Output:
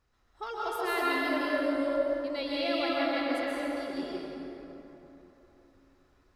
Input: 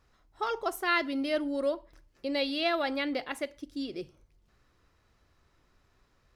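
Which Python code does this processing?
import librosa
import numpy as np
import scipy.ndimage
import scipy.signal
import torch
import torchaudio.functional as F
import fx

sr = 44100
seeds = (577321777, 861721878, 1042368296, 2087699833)

y = fx.rev_plate(x, sr, seeds[0], rt60_s=3.6, hf_ratio=0.5, predelay_ms=115, drr_db=-7.0)
y = y * librosa.db_to_amplitude(-7.0)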